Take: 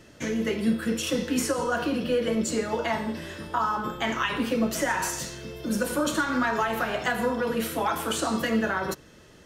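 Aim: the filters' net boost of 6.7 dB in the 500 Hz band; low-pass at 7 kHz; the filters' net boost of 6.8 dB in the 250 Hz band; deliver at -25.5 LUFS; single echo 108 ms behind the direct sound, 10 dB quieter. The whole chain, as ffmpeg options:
-af "lowpass=7000,equalizer=f=250:t=o:g=6.5,equalizer=f=500:t=o:g=6,aecho=1:1:108:0.316,volume=0.631"

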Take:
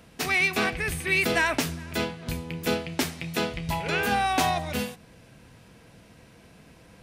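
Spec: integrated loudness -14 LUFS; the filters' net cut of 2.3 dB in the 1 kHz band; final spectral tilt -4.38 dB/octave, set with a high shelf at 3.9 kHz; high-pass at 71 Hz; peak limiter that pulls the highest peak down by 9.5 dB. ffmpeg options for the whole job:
-af "highpass=71,equalizer=f=1000:t=o:g=-3,highshelf=f=3900:g=-4,volume=7.94,alimiter=limit=0.596:level=0:latency=1"

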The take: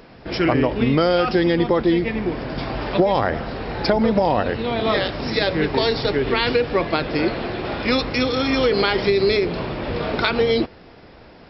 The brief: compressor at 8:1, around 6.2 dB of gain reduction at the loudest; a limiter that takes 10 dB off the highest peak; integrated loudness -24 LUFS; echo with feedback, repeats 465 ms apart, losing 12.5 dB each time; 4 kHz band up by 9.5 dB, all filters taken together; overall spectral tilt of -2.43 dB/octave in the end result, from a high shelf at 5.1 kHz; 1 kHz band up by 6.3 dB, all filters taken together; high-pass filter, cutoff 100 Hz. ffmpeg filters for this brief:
-af "highpass=100,equalizer=f=1000:t=o:g=7.5,equalizer=f=4000:t=o:g=7.5,highshelf=f=5100:g=8,acompressor=threshold=0.158:ratio=8,alimiter=limit=0.224:level=0:latency=1,aecho=1:1:465|930|1395:0.237|0.0569|0.0137,volume=0.891"

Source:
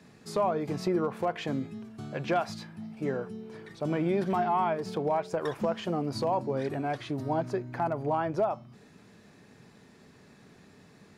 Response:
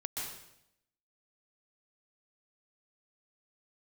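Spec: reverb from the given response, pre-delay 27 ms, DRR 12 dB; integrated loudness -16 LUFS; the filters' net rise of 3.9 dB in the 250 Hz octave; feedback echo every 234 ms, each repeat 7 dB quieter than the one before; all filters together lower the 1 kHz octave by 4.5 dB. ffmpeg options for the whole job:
-filter_complex "[0:a]equalizer=f=250:t=o:g=6,equalizer=f=1000:t=o:g=-7,aecho=1:1:234|468|702|936|1170:0.447|0.201|0.0905|0.0407|0.0183,asplit=2[s0][s1];[1:a]atrim=start_sample=2205,adelay=27[s2];[s1][s2]afir=irnorm=-1:irlink=0,volume=0.2[s3];[s0][s3]amix=inputs=2:normalize=0,volume=4.73"

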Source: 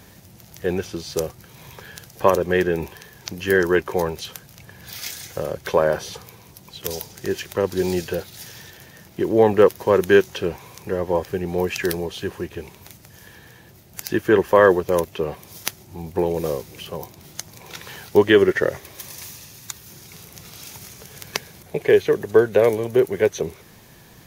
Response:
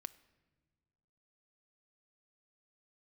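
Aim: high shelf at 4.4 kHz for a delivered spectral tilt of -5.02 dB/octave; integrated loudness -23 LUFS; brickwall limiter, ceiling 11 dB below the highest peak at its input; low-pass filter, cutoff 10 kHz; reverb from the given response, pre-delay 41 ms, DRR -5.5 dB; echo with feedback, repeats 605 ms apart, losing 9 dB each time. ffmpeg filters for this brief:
-filter_complex "[0:a]lowpass=10000,highshelf=f=4400:g=-6.5,alimiter=limit=0.224:level=0:latency=1,aecho=1:1:605|1210|1815|2420:0.355|0.124|0.0435|0.0152,asplit=2[s0][s1];[1:a]atrim=start_sample=2205,adelay=41[s2];[s1][s2]afir=irnorm=-1:irlink=0,volume=3.16[s3];[s0][s3]amix=inputs=2:normalize=0,volume=0.708"

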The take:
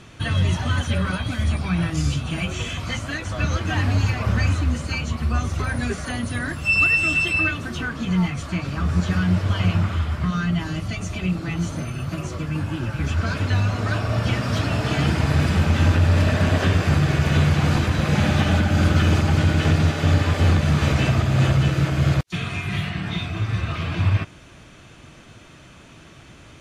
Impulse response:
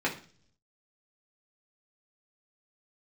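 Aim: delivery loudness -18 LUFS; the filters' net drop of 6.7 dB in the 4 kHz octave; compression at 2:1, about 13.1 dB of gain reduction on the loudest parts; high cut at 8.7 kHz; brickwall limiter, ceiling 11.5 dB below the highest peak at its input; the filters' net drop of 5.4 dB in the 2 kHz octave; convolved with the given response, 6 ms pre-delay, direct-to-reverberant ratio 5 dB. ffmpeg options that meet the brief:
-filter_complex "[0:a]lowpass=8700,equalizer=f=2000:t=o:g=-5,equalizer=f=4000:t=o:g=-7,acompressor=threshold=0.0112:ratio=2,alimiter=level_in=2.66:limit=0.0631:level=0:latency=1,volume=0.376,asplit=2[s0][s1];[1:a]atrim=start_sample=2205,adelay=6[s2];[s1][s2]afir=irnorm=-1:irlink=0,volume=0.188[s3];[s0][s3]amix=inputs=2:normalize=0,volume=11.9"

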